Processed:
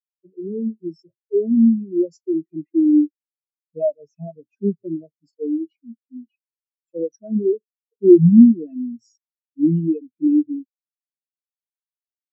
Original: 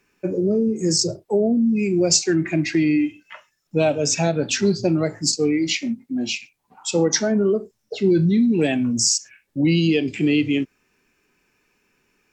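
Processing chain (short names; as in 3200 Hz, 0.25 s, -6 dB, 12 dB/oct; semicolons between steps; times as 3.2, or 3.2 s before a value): spectral expander 4:1; gain +3 dB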